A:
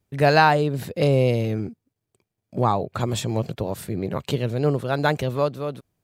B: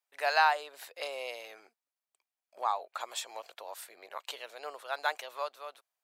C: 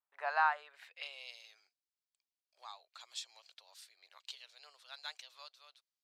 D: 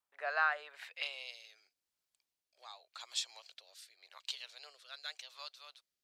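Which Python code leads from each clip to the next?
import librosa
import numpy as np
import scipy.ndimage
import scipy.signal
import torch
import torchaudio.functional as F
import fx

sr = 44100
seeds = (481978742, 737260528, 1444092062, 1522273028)

y1 = scipy.signal.sosfilt(scipy.signal.butter(4, 730.0, 'highpass', fs=sr, output='sos'), x)
y1 = y1 * librosa.db_to_amplitude(-7.0)
y2 = fx.filter_sweep_bandpass(y1, sr, from_hz=1100.0, to_hz=4600.0, start_s=0.37, end_s=1.36, q=1.9)
y2 = y2 * librosa.db_to_amplitude(-1.5)
y3 = fx.rotary(y2, sr, hz=0.85)
y3 = y3 * librosa.db_to_amplitude(7.0)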